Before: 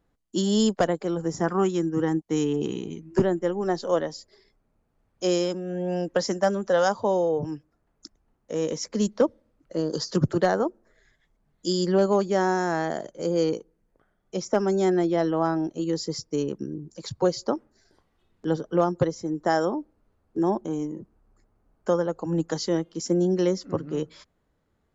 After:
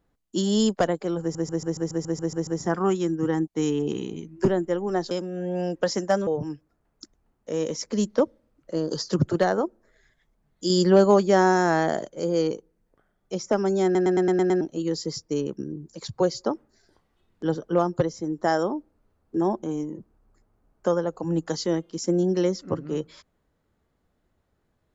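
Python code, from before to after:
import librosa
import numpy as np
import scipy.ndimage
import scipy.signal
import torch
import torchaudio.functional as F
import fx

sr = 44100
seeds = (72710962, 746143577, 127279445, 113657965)

y = fx.edit(x, sr, fx.stutter(start_s=1.21, slice_s=0.14, count=10),
    fx.cut(start_s=3.85, length_s=1.59),
    fx.cut(start_s=6.6, length_s=0.69),
    fx.clip_gain(start_s=11.72, length_s=1.37, db=4.5),
    fx.stutter_over(start_s=14.86, slice_s=0.11, count=7), tone=tone)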